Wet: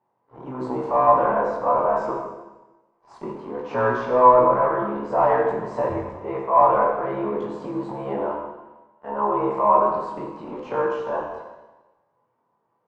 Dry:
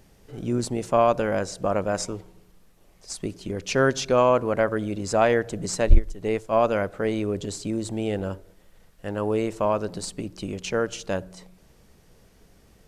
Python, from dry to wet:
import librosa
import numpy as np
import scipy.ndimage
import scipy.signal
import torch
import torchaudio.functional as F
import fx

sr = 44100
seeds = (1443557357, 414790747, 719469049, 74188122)

p1 = fx.frame_reverse(x, sr, frame_ms=48.0)
p2 = scipy.signal.sosfilt(scipy.signal.butter(4, 110.0, 'highpass', fs=sr, output='sos'), p1)
p3 = fx.tilt_eq(p2, sr, slope=2.5)
p4 = fx.hum_notches(p3, sr, base_hz=50, count=4)
p5 = fx.leveller(p4, sr, passes=3)
p6 = fx.transient(p5, sr, attack_db=-4, sustain_db=5)
p7 = fx.lowpass_res(p6, sr, hz=980.0, q=7.3)
p8 = p7 + fx.echo_single(p7, sr, ms=274, db=-21.0, dry=0)
p9 = fx.rev_plate(p8, sr, seeds[0], rt60_s=1.1, hf_ratio=1.0, predelay_ms=0, drr_db=0.0)
y = F.gain(torch.from_numpy(p9), -7.5).numpy()